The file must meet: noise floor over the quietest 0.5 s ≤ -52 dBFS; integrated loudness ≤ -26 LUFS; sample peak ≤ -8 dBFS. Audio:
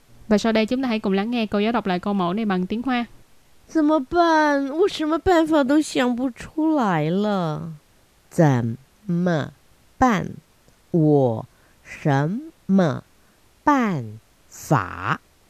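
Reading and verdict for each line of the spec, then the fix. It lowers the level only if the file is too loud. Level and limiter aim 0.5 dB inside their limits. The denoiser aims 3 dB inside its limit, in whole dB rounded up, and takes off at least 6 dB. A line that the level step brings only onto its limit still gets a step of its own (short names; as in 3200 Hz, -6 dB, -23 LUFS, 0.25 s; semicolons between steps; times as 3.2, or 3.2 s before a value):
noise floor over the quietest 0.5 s -57 dBFS: OK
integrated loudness -21.5 LUFS: fail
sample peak -4.5 dBFS: fail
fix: gain -5 dB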